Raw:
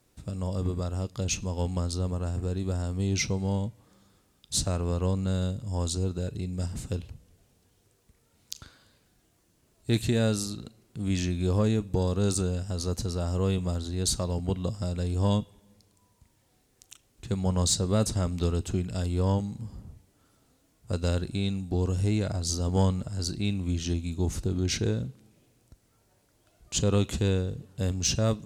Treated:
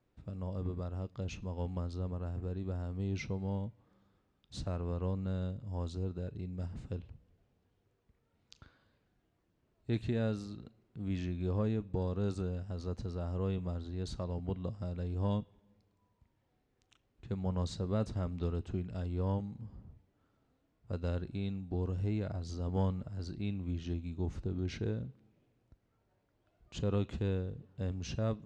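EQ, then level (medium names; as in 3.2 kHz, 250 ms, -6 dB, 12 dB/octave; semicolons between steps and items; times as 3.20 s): Bessel low-pass 2.2 kHz, order 2; -8.0 dB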